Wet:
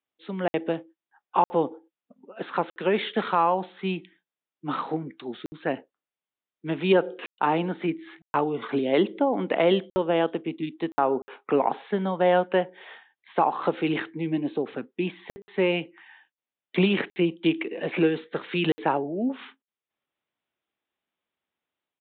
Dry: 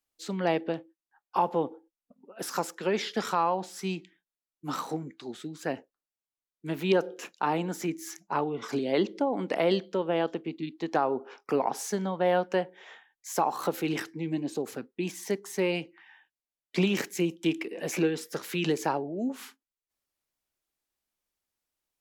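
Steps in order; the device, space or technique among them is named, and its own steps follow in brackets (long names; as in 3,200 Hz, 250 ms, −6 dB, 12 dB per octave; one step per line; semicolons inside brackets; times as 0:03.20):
call with lost packets (high-pass filter 130 Hz 12 dB per octave; downsampling to 8,000 Hz; automatic gain control gain up to 4.5 dB; dropped packets of 60 ms)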